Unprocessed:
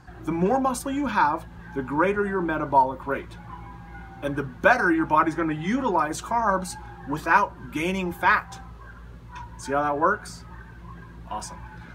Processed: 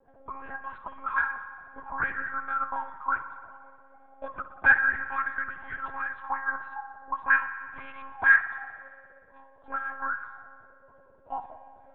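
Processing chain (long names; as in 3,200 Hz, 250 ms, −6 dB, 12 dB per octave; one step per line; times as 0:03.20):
envelope filter 490–1,700 Hz, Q 13, up, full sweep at −20 dBFS
one-pitch LPC vocoder at 8 kHz 270 Hz
spring reverb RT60 1.8 s, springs 58 ms, chirp 60 ms, DRR 10.5 dB
level +9 dB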